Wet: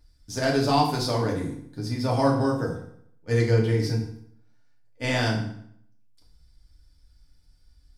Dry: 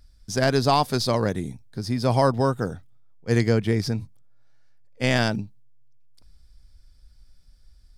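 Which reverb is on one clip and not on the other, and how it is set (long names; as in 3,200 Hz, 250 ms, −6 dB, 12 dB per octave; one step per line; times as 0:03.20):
feedback delay network reverb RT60 0.66 s, low-frequency decay 1.1×, high-frequency decay 0.85×, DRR −3 dB
level −7 dB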